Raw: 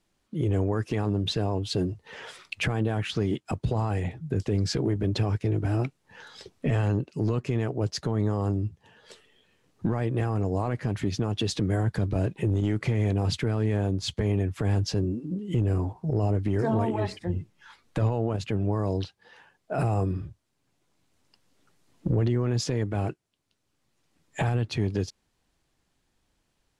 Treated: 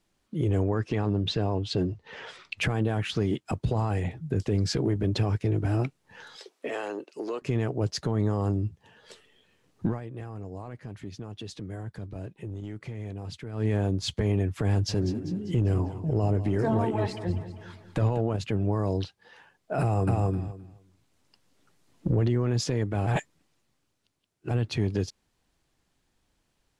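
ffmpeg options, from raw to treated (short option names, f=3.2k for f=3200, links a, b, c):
-filter_complex "[0:a]asettb=1/sr,asplit=3[a][b][c];[a]atrim=end=0.634[d];[b]atrim=start=0.63:end=2.58,asetpts=PTS-STARTPTS,afade=t=in:d=0.004:c=qsin,afade=t=out:st=1.946:d=0.004:c=qsin,lowpass=5.5k[e];[c]atrim=start=2.576[f];[d][e]acrossfade=d=0.004:c1=hsin:c2=qsin[g];[g][f]acrossfade=d=0.004:c1=qsin:c2=hsin,asettb=1/sr,asplit=3[h][i][j];[h]atrim=end=6.364[k];[i]atrim=start=6.36:end=7.42,asetpts=PTS-STARTPTS,afade=t=in:d=0.004:c=qsin,afade=t=out:st=1.056:d=0.004:c=qsin,highpass=f=350:w=0.5412,highpass=f=350:w=1.3066[l];[j]atrim=start=7.416[m];[k][l]acrossfade=d=0.004:c1=hsin:c2=qsin[n];[n][m]acrossfade=d=0.004:c1=qsin:c2=hsin,asplit=3[o][p][q];[o]afade=t=out:st=14.88:d=0.02[r];[p]aecho=1:1:197|394|591|788|985:0.224|0.119|0.0629|0.0333|0.0177,afade=t=in:st=14.88:d=0.02,afade=t=out:st=18.2:d=0.02[s];[q]afade=t=in:st=18.2:d=0.02[t];[r][s][t]amix=inputs=3:normalize=0,asplit=2[u][v];[v]afade=t=in:st=19.81:d=0.01,afade=t=out:st=20.25:d=0.01,aecho=0:1:260|520|780:0.891251|0.133688|0.0200531[w];[u][w]amix=inputs=2:normalize=0,asplit=5[x][y][z][aa][ab];[x]atrim=end=10.01,asetpts=PTS-STARTPTS,afade=t=out:st=9.87:d=0.14:silence=0.251189[ac];[y]atrim=start=10.01:end=13.52,asetpts=PTS-STARTPTS,volume=-12dB[ad];[z]atrim=start=13.52:end=23.072,asetpts=PTS-STARTPTS,afade=t=in:d=0.14:silence=0.251189[ae];[aa]atrim=start=23.068:end=24.512,asetpts=PTS-STARTPTS,areverse[af];[ab]atrim=start=24.508[ag];[ac][ad][ae]concat=n=3:v=0:a=1[ah];[ah][af]acrossfade=d=0.004:c1=hsin:c2=hsin[ai];[ai][ag]acrossfade=d=0.004:c1=hsin:c2=hsin"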